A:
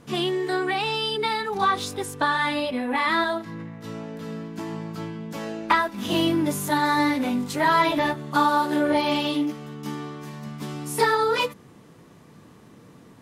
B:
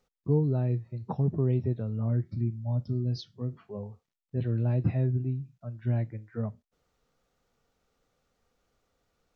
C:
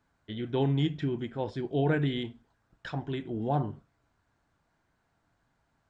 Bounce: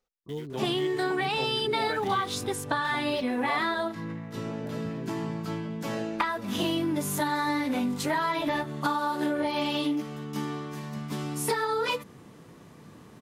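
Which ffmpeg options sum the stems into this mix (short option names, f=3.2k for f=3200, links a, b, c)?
-filter_complex "[0:a]acompressor=threshold=-24dB:ratio=10,adelay=500,volume=0dB[a];[1:a]equalizer=f=110:t=o:w=1.8:g=-11.5,volume=-6.5dB[b];[2:a]highpass=420,aeval=exprs='val(0)*gte(abs(val(0)),0.00596)':c=same,volume=-4dB[c];[a][b][c]amix=inputs=3:normalize=0"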